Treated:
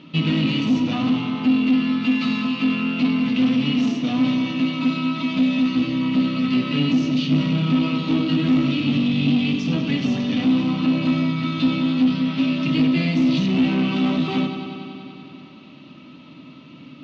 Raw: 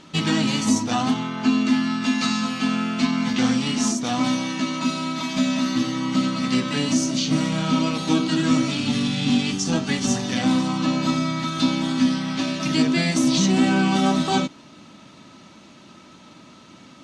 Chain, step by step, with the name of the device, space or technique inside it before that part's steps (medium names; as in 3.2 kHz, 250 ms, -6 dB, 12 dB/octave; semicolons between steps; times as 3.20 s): analogue delay pedal into a guitar amplifier (bucket-brigade echo 95 ms, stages 4096, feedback 79%, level -11 dB; valve stage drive 20 dB, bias 0.35; cabinet simulation 76–4000 Hz, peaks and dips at 150 Hz +10 dB, 270 Hz +9 dB, 810 Hz -6 dB, 1.6 kHz -8 dB, 2.7 kHz +7 dB)